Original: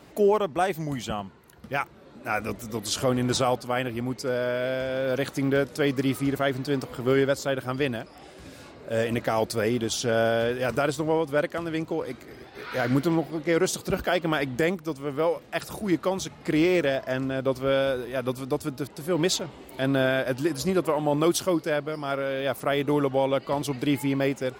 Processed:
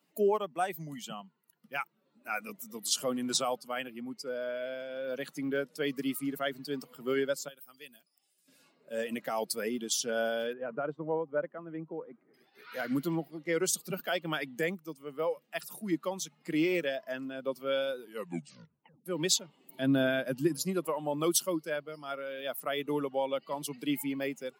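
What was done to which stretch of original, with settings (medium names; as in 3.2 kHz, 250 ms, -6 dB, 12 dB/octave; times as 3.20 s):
3.90–5.85 s: treble shelf 5.8 kHz -4.5 dB
7.48–8.48 s: pre-emphasis filter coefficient 0.8
10.53–12.34 s: low-pass 1.4 kHz
17.99 s: tape stop 1.07 s
19.64–20.57 s: bass shelf 230 Hz +11.5 dB
whole clip: expander on every frequency bin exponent 1.5; Chebyshev high-pass 150 Hz, order 5; treble shelf 4.6 kHz +10 dB; trim -4.5 dB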